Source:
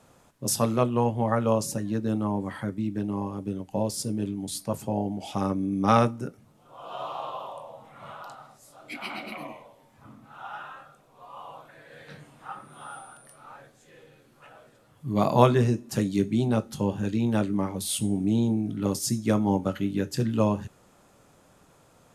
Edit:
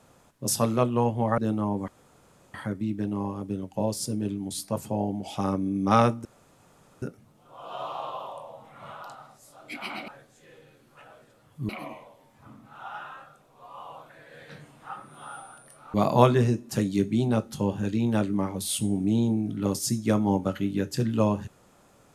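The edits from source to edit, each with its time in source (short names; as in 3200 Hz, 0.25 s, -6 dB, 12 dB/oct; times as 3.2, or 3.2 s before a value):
1.38–2.01 cut
2.51 insert room tone 0.66 s
6.22 insert room tone 0.77 s
13.53–15.14 move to 9.28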